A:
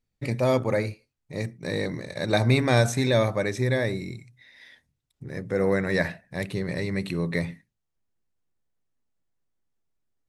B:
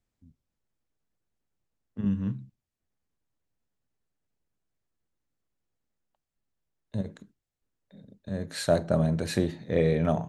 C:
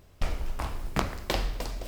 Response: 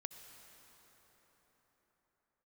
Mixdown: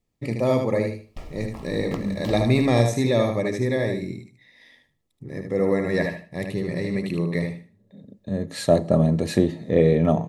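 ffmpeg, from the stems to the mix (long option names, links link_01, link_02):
-filter_complex "[0:a]volume=-3dB,asplit=3[link_01][link_02][link_03];[link_02]volume=-5.5dB[link_04];[1:a]volume=1dB,asplit=2[link_05][link_06];[link_06]volume=-13.5dB[link_07];[2:a]adelay=950,volume=-10dB[link_08];[link_03]apad=whole_len=453758[link_09];[link_05][link_09]sidechaincompress=threshold=-42dB:ratio=8:attack=34:release=547[link_10];[3:a]atrim=start_sample=2205[link_11];[link_07][link_11]afir=irnorm=-1:irlink=0[link_12];[link_04]aecho=0:1:76|152|228|304:1|0.22|0.0484|0.0106[link_13];[link_01][link_10][link_08][link_12][link_13]amix=inputs=5:normalize=0,asuperstop=centerf=1500:order=12:qfactor=6.4,equalizer=frequency=300:width_type=o:width=2.3:gain=6"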